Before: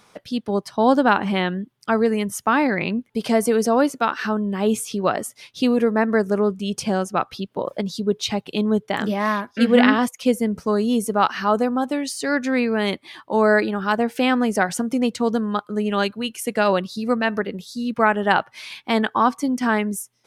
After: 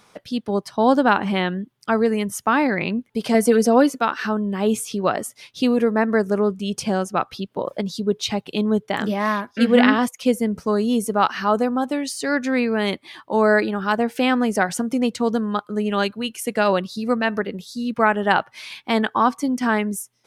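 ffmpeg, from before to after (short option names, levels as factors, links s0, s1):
-filter_complex "[0:a]asettb=1/sr,asplit=3[s0][s1][s2];[s0]atrim=end=3.344[s3];[s1]atrim=start=3.34:end=3.99,asetpts=PTS-STARTPTS,afade=t=in:d=0.004:c=qsin,afade=t=out:st=0.646:d=0.004:c=qsin,aecho=1:1:4:0.63,atrim=end_sample=28665[s4];[s2]atrim=start=3.986[s5];[s3][s4]acrossfade=d=0.004:c1=hsin:c2=qsin[s6];[s6][s5]acrossfade=d=0.004:c1=qsin:c2=hsin"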